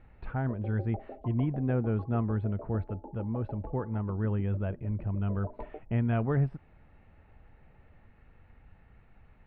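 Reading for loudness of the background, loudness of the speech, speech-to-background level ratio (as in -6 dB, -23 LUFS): -47.5 LUFS, -32.0 LUFS, 15.5 dB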